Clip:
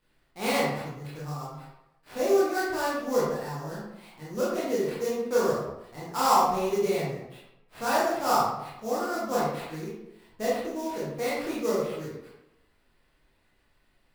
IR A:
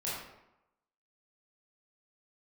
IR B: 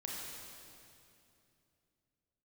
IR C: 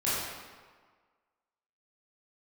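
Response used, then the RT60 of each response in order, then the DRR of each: A; 0.90, 2.7, 1.6 seconds; −8.5, −3.5, −11.0 decibels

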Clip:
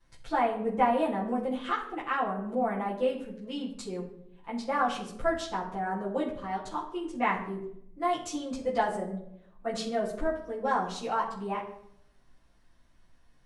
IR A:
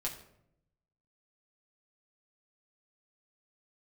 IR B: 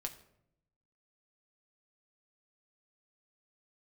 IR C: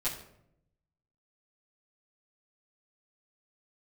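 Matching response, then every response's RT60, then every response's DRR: C; 0.75, 0.75, 0.75 seconds; −3.5, 3.5, −12.0 decibels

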